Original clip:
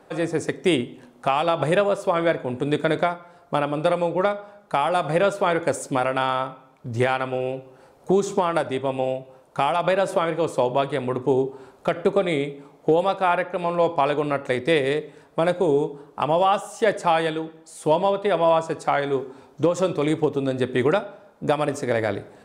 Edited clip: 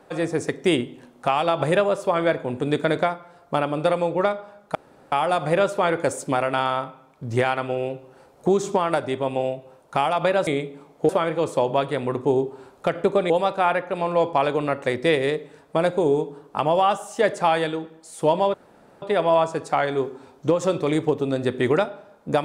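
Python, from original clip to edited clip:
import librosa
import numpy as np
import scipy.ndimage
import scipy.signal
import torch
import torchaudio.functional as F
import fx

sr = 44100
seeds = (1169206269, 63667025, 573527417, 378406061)

y = fx.edit(x, sr, fx.insert_room_tone(at_s=4.75, length_s=0.37),
    fx.move(start_s=12.31, length_s=0.62, to_s=10.1),
    fx.insert_room_tone(at_s=18.17, length_s=0.48), tone=tone)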